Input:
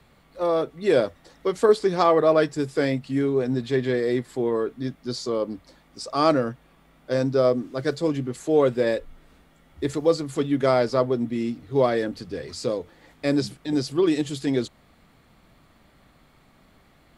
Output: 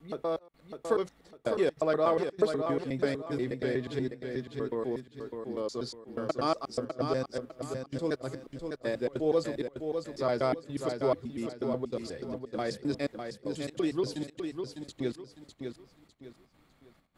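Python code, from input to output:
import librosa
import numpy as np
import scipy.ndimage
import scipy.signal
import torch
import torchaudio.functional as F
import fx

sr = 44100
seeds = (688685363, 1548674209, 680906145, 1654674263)

y = fx.block_reorder(x, sr, ms=121.0, group=7)
y = fx.step_gate(y, sr, bpm=195, pattern='xxxxx..xxx.x', floor_db=-24.0, edge_ms=4.5)
y = fx.echo_feedback(y, sr, ms=603, feedback_pct=32, wet_db=-6.5)
y = y * librosa.db_to_amplitude(-8.5)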